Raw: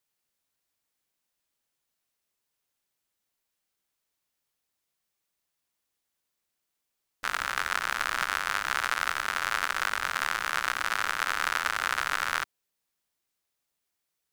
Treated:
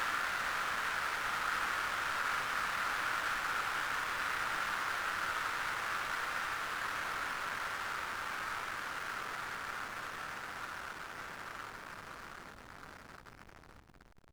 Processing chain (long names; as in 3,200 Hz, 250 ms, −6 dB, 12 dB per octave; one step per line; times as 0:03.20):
extreme stretch with random phases 23×, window 1.00 s, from 0:12.07
slack as between gear wheels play −30.5 dBFS
level −5 dB